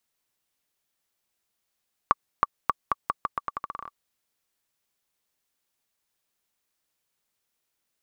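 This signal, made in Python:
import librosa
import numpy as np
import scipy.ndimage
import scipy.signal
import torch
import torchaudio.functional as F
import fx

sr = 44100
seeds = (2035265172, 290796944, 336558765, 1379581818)

y = fx.bouncing_ball(sr, first_gap_s=0.32, ratio=0.83, hz=1150.0, decay_ms=29.0, level_db=-5.0)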